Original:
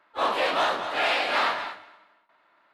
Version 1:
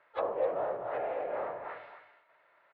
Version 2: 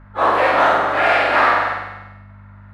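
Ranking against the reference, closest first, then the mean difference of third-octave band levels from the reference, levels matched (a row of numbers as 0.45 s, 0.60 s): 2, 1; 5.5 dB, 10.5 dB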